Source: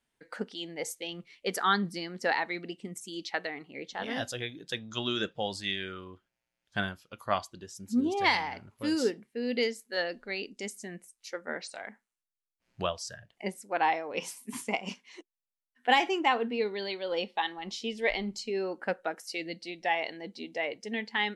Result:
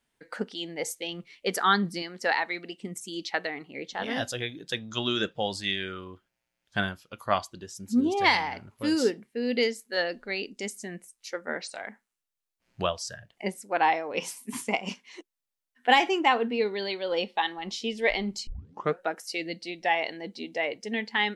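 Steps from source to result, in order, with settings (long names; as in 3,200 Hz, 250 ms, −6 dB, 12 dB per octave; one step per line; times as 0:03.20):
0:02.02–0:02.81: low-shelf EQ 320 Hz −9.5 dB
0:18.47: tape start 0.52 s
level +3.5 dB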